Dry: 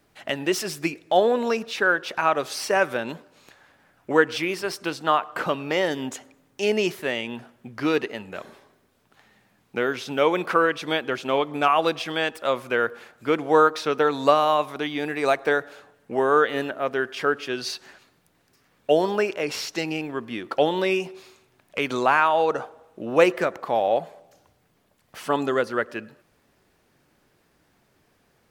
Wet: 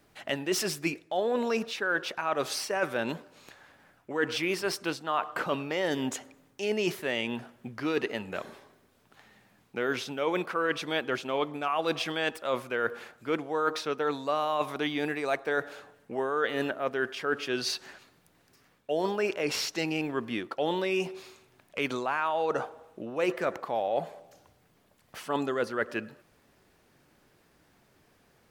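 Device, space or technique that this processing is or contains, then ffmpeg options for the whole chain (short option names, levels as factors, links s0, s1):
compression on the reversed sound: -af "areverse,acompressor=threshold=0.0562:ratio=8,areverse"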